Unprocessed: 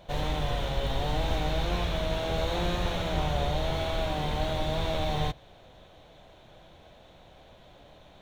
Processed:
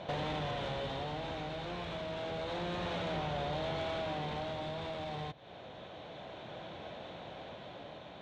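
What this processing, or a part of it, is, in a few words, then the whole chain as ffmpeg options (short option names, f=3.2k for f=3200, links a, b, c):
AM radio: -af "highpass=130,lowpass=3.9k,acompressor=threshold=-41dB:ratio=6,asoftclip=type=tanh:threshold=-38dB,tremolo=f=0.29:d=0.4,volume=9dB"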